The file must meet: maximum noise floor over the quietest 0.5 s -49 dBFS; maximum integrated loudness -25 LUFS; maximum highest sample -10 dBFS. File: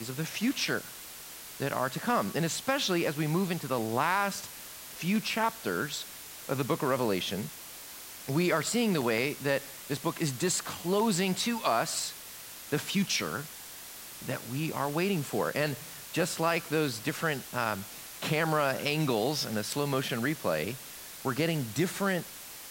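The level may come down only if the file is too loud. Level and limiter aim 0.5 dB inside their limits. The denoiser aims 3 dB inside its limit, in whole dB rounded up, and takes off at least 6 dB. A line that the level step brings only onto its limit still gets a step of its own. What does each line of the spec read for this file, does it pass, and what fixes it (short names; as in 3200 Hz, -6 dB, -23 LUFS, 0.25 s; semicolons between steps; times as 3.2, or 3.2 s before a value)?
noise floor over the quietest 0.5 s -45 dBFS: fail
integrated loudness -30.5 LUFS: OK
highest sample -14.0 dBFS: OK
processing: denoiser 7 dB, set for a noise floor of -45 dBFS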